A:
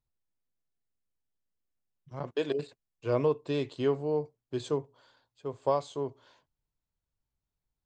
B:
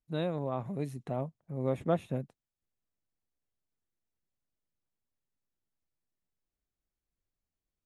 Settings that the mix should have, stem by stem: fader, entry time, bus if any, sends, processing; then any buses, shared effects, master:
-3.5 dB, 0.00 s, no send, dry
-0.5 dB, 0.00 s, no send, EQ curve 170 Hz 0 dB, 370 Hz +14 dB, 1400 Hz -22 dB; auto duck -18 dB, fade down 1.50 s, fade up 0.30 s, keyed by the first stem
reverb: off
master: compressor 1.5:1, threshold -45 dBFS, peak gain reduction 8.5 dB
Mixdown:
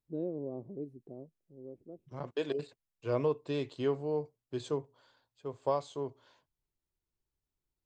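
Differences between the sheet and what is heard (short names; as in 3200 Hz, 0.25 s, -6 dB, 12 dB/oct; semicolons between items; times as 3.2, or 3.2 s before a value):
stem B -0.5 dB -> -10.0 dB; master: missing compressor 1.5:1, threshold -45 dBFS, peak gain reduction 8.5 dB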